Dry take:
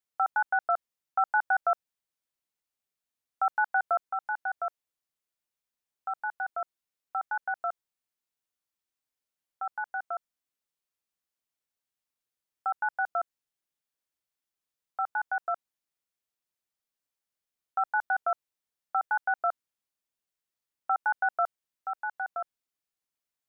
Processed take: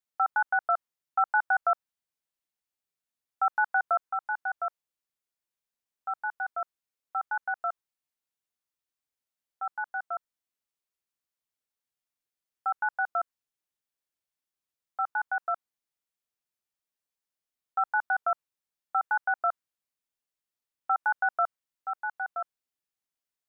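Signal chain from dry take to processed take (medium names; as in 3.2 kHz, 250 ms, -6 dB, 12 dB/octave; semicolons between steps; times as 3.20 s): dynamic bell 1.2 kHz, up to +5 dB, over -39 dBFS, Q 1.3; trim -2.5 dB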